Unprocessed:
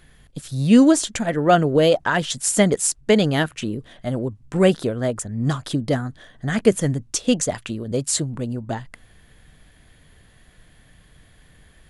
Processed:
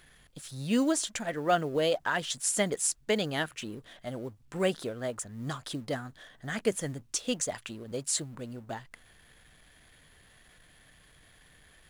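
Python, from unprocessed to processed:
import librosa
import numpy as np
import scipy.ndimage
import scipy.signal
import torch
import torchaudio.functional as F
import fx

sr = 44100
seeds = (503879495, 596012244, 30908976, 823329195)

y = fx.law_mismatch(x, sr, coded='mu')
y = fx.low_shelf(y, sr, hz=390.0, db=-9.5)
y = F.gain(torch.from_numpy(y), -8.0).numpy()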